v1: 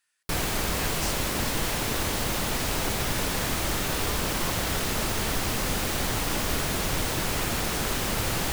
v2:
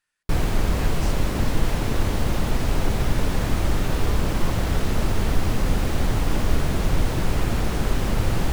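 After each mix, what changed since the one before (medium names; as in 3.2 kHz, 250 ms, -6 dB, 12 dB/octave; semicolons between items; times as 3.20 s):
master: add tilt EQ -2.5 dB/octave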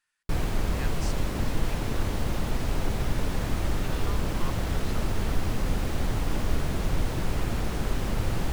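background -5.5 dB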